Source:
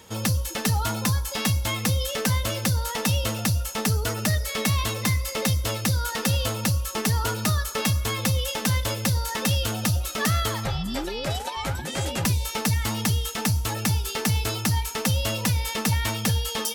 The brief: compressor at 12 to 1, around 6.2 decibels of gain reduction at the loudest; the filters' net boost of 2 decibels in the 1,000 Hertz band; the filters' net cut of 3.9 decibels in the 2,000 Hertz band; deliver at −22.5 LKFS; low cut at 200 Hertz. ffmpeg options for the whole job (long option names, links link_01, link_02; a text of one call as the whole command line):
ffmpeg -i in.wav -af "highpass=200,equalizer=frequency=1000:width_type=o:gain=4,equalizer=frequency=2000:width_type=o:gain=-6,acompressor=threshold=-27dB:ratio=12,volume=8.5dB" out.wav